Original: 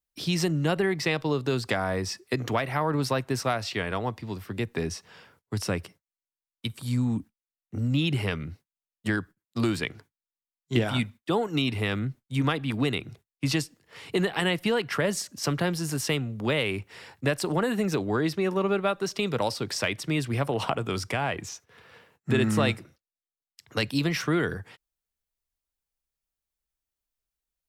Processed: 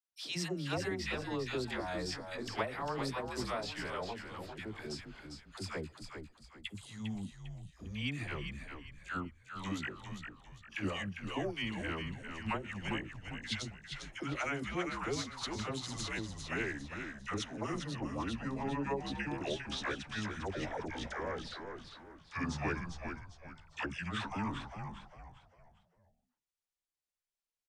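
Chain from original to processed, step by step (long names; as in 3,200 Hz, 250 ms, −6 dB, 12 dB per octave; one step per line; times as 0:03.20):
pitch glide at a constant tempo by −9 semitones starting unshifted
low-pass filter 9,900 Hz 12 dB per octave
low-shelf EQ 250 Hz −8.5 dB
all-pass dispersion lows, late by 91 ms, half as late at 720 Hz
on a send: echo with shifted repeats 401 ms, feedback 35%, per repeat −77 Hz, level −6.5 dB
on the sum: level −7.5 dB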